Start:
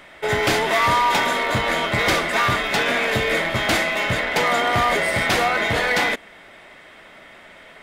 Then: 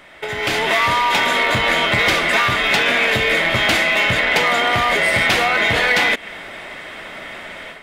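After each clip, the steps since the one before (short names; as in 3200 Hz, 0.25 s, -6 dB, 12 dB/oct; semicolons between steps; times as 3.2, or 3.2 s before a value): compressor 6:1, threshold -27 dBFS, peak gain reduction 11.5 dB; dynamic EQ 2700 Hz, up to +6 dB, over -47 dBFS, Q 1.1; AGC gain up to 11 dB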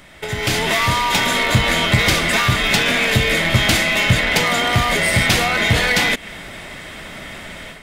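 tone controls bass +13 dB, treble +10 dB; gain -2.5 dB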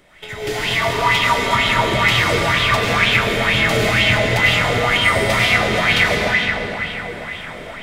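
digital reverb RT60 4.8 s, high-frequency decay 0.65×, pre-delay 55 ms, DRR -6.5 dB; LFO bell 2.1 Hz 390–3200 Hz +11 dB; gain -10.5 dB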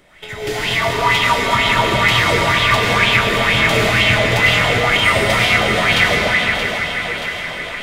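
thinning echo 0.627 s, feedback 62%, high-pass 540 Hz, level -8 dB; gain +1 dB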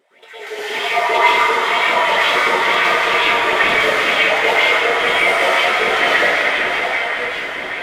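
wow and flutter 81 cents; LFO high-pass saw up 5.1 Hz 330–2800 Hz; plate-style reverb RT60 1.6 s, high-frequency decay 0.4×, pre-delay 0.1 s, DRR -10 dB; gain -12.5 dB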